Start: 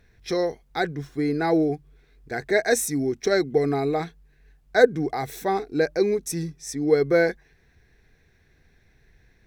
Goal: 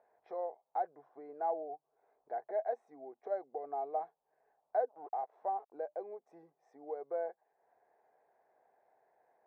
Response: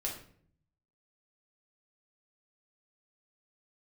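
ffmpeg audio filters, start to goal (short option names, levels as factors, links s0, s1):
-filter_complex "[0:a]acompressor=threshold=0.00562:ratio=2,asplit=3[s0][s1][s2];[s0]afade=t=out:st=4.88:d=0.02[s3];[s1]aeval=exprs='sgn(val(0))*max(abs(val(0))-0.00376,0)':c=same,afade=t=in:st=4.88:d=0.02,afade=t=out:st=5.71:d=0.02[s4];[s2]afade=t=in:st=5.71:d=0.02[s5];[s3][s4][s5]amix=inputs=3:normalize=0,asuperpass=centerf=740:order=4:qfactor=2.1,volume=2.11"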